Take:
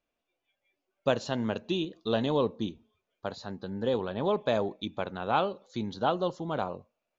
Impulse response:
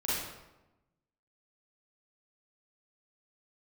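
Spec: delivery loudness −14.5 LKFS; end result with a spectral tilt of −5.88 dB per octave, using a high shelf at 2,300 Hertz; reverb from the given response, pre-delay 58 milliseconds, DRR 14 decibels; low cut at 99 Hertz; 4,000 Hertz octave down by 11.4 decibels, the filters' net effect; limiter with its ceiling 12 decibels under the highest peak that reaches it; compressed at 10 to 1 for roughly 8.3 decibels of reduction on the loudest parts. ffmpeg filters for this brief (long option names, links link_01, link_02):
-filter_complex "[0:a]highpass=99,highshelf=frequency=2300:gain=-8.5,equalizer=frequency=4000:width_type=o:gain=-7,acompressor=threshold=-30dB:ratio=10,alimiter=level_in=6dB:limit=-24dB:level=0:latency=1,volume=-6dB,asplit=2[link_01][link_02];[1:a]atrim=start_sample=2205,adelay=58[link_03];[link_02][link_03]afir=irnorm=-1:irlink=0,volume=-21dB[link_04];[link_01][link_04]amix=inputs=2:normalize=0,volume=26.5dB"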